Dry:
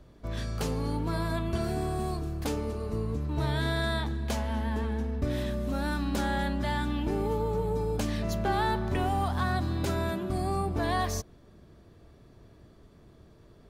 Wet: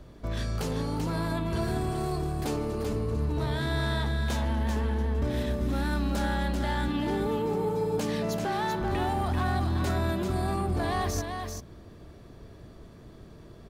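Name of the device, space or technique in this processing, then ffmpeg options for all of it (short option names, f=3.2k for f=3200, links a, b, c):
soft clipper into limiter: -filter_complex "[0:a]asettb=1/sr,asplit=3[a][b][c];[a]atrim=end=6.884[d];[b]atrim=start=6.88:end=8.81,asetpts=PTS-STARTPTS,afade=t=in:d=0.004:c=qsin,afade=t=out:st=1.926:d=0.004:c=qsin,highpass=130[e];[c]atrim=start=8.806[f];[d][e]acrossfade=d=0.004:c1=hsin:c2=qsin[g];[g][f]acrossfade=d=0.004:c1=qsin:c2=hsin,asoftclip=type=tanh:threshold=-22dB,alimiter=level_in=5dB:limit=-24dB:level=0:latency=1,volume=-5dB,aecho=1:1:388:0.531,volume=5.5dB"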